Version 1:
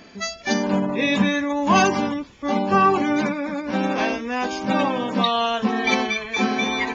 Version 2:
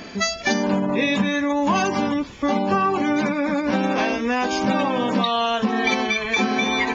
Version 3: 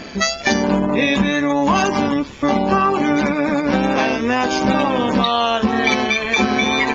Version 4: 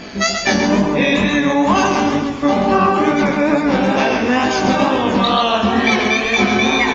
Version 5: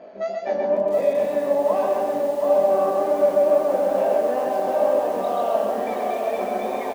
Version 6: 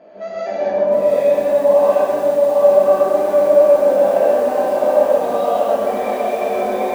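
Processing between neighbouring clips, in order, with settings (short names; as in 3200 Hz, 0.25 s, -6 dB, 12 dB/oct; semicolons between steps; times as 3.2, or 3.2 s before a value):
compressor 6:1, threshold -27 dBFS, peak gain reduction 14 dB; gain +9 dB
AM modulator 140 Hz, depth 30%; wow and flutter 22 cents; gain +6 dB
feedback echo 0.134 s, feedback 44%, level -6 dB; chorus 2.2 Hz, delay 17.5 ms, depth 7.2 ms; gain +4 dB
band-pass 600 Hz, Q 6; on a send: echo 0.129 s -6 dB; on the sum: lo-fi delay 0.726 s, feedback 55%, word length 7-bit, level -6 dB; gain +1.5 dB
non-linear reverb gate 0.21 s rising, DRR -7.5 dB; gain -3 dB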